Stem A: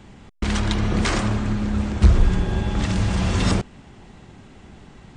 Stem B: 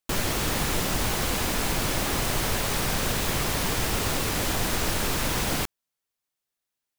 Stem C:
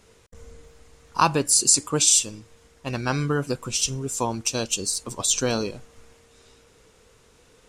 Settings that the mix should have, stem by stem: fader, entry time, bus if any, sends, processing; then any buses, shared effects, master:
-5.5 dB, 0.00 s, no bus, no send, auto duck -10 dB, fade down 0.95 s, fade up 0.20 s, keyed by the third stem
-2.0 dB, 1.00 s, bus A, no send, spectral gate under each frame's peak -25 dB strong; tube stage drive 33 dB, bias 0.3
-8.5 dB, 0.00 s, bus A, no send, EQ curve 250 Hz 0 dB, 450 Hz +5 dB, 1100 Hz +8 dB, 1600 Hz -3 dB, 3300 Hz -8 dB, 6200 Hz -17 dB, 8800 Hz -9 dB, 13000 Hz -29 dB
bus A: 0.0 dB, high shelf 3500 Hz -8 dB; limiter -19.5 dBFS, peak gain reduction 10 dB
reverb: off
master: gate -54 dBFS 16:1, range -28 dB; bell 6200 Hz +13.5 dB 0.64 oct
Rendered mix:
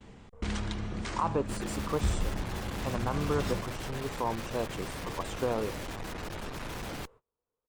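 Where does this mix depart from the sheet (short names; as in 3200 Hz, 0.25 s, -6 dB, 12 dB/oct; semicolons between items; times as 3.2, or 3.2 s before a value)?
stem B: entry 1.00 s -> 1.40 s; master: missing bell 6200 Hz +13.5 dB 0.64 oct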